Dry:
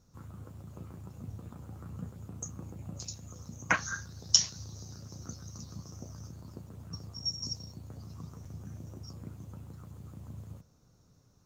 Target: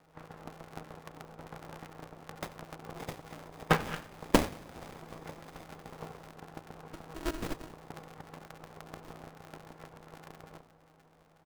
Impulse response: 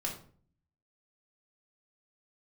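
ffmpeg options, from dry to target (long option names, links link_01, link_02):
-filter_complex "[0:a]highshelf=frequency=3000:gain=-8.5,aecho=1:1:4.1:0.49,adynamicequalizer=threshold=0.002:dfrequency=5400:dqfactor=3.7:tfrequency=5400:tqfactor=3.7:attack=5:release=100:ratio=0.375:range=3:mode=boostabove:tftype=bell,asplit=2[link_01][link_02];[link_02]acompressor=threshold=-45dB:ratio=6,volume=2dB[link_03];[link_01][link_03]amix=inputs=2:normalize=0,highpass=frequency=630:width_type=q:width=6.8,afreqshift=-49,acrossover=split=2500[link_04][link_05];[link_04]aeval=exprs='max(val(0),0)':channel_layout=same[link_06];[link_05]acrusher=samples=31:mix=1:aa=0.000001[link_07];[link_06][link_07]amix=inputs=2:normalize=0,asplit=4[link_08][link_09][link_10][link_11];[link_09]adelay=88,afreqshift=-64,volume=-18dB[link_12];[link_10]adelay=176,afreqshift=-128,volume=-26.9dB[link_13];[link_11]adelay=264,afreqshift=-192,volume=-35.7dB[link_14];[link_08][link_12][link_13][link_14]amix=inputs=4:normalize=0,aeval=exprs='val(0)*sgn(sin(2*PI*160*n/s))':channel_layout=same,volume=1dB"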